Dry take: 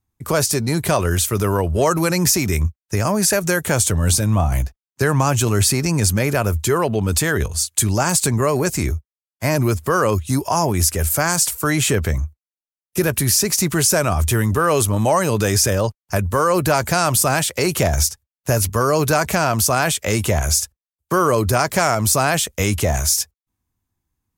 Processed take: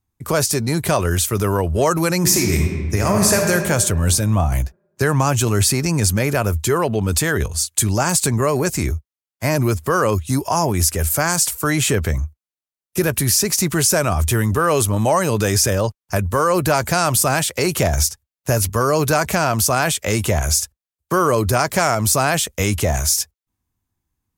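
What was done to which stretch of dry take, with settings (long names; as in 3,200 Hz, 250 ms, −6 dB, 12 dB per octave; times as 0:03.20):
0:02.18–0:03.51: thrown reverb, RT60 1.7 s, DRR 1 dB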